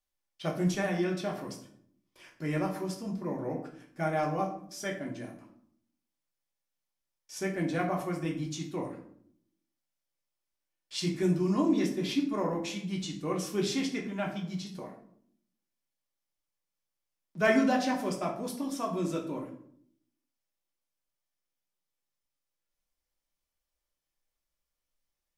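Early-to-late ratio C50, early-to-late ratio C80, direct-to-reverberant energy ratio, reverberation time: 8.0 dB, 12.0 dB, -1.0 dB, 0.65 s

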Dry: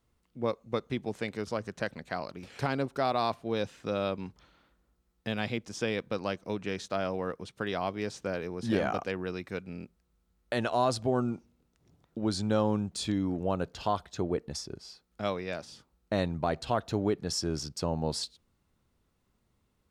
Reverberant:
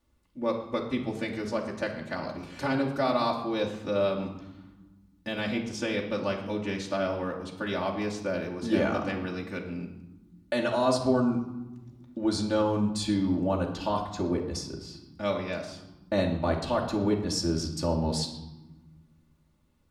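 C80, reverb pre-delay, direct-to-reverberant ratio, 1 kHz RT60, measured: 10.0 dB, 3 ms, -3.0 dB, 1.1 s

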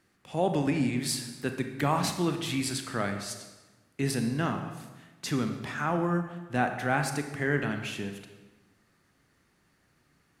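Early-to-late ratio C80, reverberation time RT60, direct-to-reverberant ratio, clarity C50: 9.5 dB, 1.2 s, 6.0 dB, 7.5 dB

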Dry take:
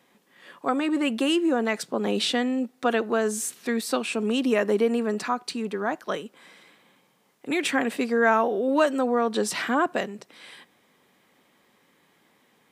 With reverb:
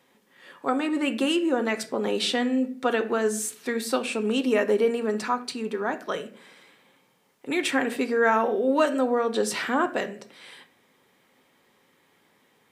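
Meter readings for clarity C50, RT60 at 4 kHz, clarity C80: 14.5 dB, 0.35 s, 18.5 dB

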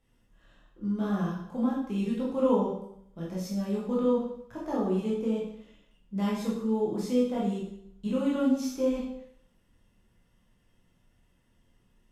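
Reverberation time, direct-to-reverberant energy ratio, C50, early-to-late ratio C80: 0.70 s, -6.0 dB, 2.0 dB, 5.5 dB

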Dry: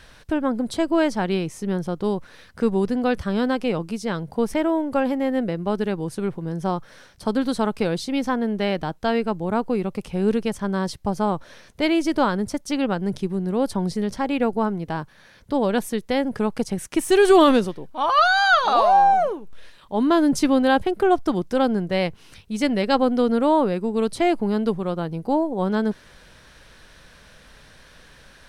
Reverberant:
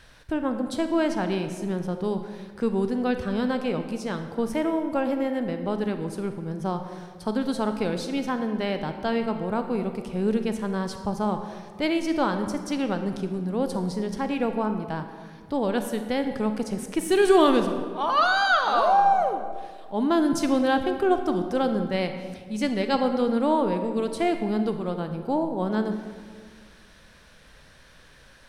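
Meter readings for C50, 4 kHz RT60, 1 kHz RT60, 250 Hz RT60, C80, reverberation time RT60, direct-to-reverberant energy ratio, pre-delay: 8.0 dB, 1.1 s, 1.7 s, 2.0 s, 9.0 dB, 1.8 s, 7.0 dB, 30 ms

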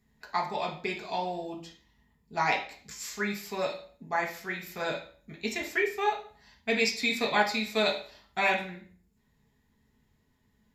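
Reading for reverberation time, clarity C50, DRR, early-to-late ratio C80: 0.50 s, 8.5 dB, -0.5 dB, 13.0 dB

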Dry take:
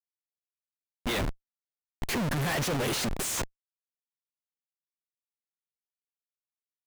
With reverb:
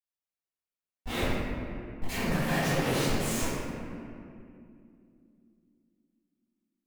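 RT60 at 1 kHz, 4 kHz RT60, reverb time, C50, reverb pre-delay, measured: 2.3 s, 1.4 s, 2.6 s, -4.0 dB, 3 ms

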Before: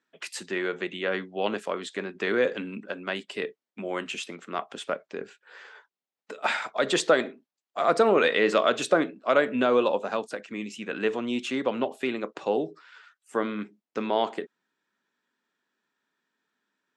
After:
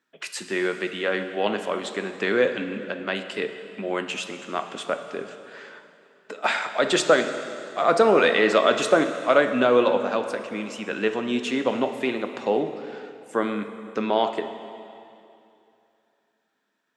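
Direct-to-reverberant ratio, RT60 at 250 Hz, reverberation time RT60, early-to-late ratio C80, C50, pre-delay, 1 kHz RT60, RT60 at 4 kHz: 8.0 dB, 2.7 s, 2.7 s, 9.5 dB, 9.0 dB, 5 ms, 2.7 s, 2.5 s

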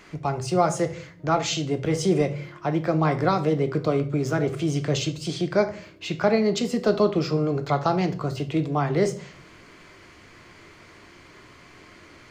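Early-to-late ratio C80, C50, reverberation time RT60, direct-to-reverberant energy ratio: 19.0 dB, 14.0 dB, 0.45 s, 7.0 dB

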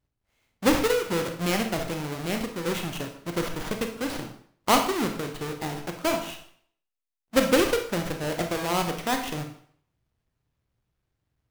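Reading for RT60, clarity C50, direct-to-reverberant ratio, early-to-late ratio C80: 0.60 s, 7.5 dB, 4.5 dB, 11.5 dB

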